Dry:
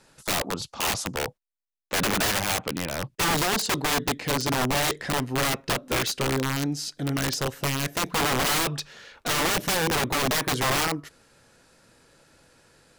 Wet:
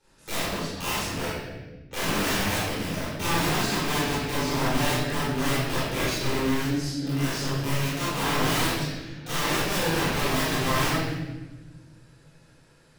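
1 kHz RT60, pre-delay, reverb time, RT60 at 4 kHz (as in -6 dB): 1.0 s, 21 ms, 1.2 s, 1.0 s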